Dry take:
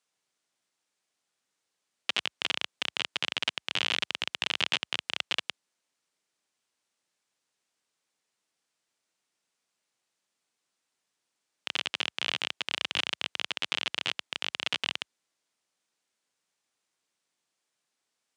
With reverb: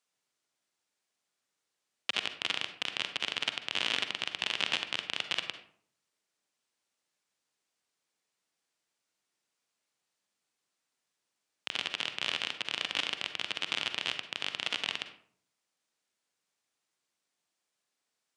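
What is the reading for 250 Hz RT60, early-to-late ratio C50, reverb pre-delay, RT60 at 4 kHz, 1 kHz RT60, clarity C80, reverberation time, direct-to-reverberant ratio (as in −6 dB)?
0.70 s, 9.0 dB, 39 ms, 0.30 s, 0.55 s, 12.5 dB, 0.60 s, 8.0 dB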